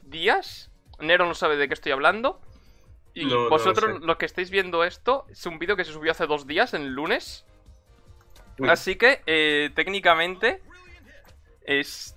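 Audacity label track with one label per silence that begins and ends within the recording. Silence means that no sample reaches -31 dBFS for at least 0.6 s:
2.310000	3.170000	silence
7.350000	8.600000	silence
10.560000	11.680000	silence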